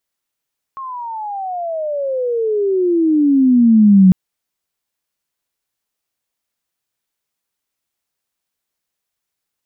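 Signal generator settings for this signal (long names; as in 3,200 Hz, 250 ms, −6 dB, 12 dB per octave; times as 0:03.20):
pitch glide with a swell sine, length 3.35 s, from 1,090 Hz, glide −31 semitones, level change +21 dB, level −4 dB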